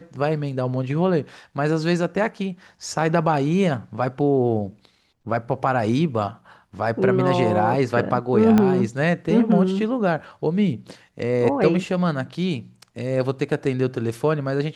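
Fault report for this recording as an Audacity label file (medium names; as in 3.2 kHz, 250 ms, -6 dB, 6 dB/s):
8.580000	8.580000	pop -7 dBFS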